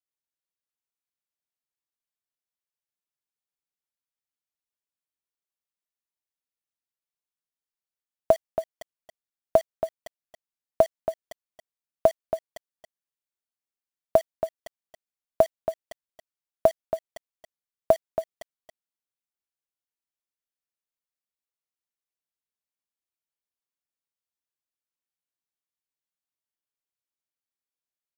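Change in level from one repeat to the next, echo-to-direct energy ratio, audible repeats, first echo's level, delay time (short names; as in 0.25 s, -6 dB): no steady repeat, -9.5 dB, 1, -9.5 dB, 0.277 s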